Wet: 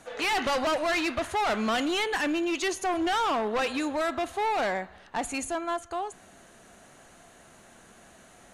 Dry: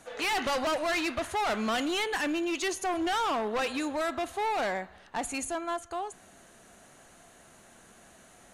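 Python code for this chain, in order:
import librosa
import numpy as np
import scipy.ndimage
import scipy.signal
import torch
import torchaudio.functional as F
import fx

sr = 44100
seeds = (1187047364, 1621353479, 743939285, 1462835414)

y = fx.high_shelf(x, sr, hz=8100.0, db=-5.0)
y = F.gain(torch.from_numpy(y), 2.5).numpy()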